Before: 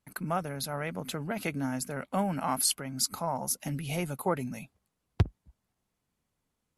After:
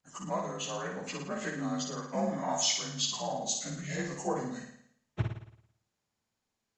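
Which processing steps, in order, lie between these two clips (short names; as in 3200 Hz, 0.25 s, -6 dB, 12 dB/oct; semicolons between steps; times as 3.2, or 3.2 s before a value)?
inharmonic rescaling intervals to 87%; low shelf 320 Hz -5.5 dB; flutter echo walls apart 9.5 m, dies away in 0.68 s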